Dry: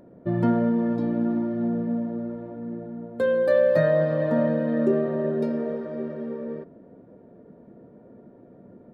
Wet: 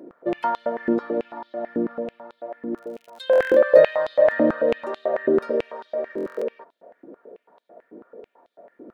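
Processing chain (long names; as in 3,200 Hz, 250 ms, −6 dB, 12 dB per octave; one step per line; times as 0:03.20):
0:02.74–0:03.22: surface crackle 62 per second → 150 per second −42 dBFS
buffer that repeats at 0:03.31/0:06.16, samples 1,024, times 10
high-pass on a step sequencer 9.1 Hz 320–3,700 Hz
level +2 dB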